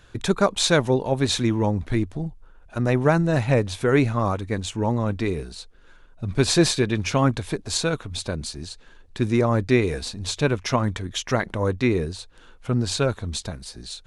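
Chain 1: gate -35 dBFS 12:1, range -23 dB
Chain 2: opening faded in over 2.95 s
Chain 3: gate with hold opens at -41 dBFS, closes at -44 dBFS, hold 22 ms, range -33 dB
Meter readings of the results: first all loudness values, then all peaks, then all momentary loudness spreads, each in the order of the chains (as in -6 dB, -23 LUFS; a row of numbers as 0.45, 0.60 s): -23.0, -24.0, -23.0 LUFS; -5.0, -5.0, -5.0 dBFS; 13, 16, 15 LU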